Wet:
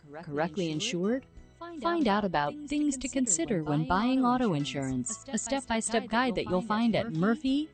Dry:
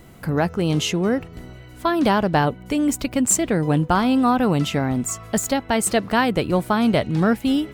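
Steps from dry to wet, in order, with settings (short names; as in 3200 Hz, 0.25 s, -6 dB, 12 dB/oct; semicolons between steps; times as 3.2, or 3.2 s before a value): spectral noise reduction 10 dB; pre-echo 0.238 s -14 dB; gain -8 dB; MP2 64 kbps 32000 Hz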